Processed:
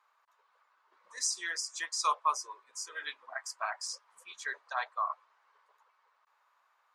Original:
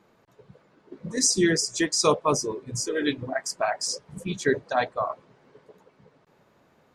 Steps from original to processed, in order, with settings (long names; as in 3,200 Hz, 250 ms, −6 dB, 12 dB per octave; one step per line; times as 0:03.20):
four-pole ladder high-pass 940 Hz, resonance 55%